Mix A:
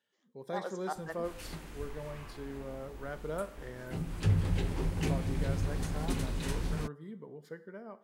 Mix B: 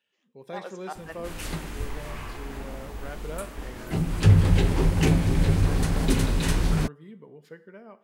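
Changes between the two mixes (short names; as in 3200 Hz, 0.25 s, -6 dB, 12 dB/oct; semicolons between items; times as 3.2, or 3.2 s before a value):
speech: add bell 2600 Hz +15 dB 0.35 oct; background +11.0 dB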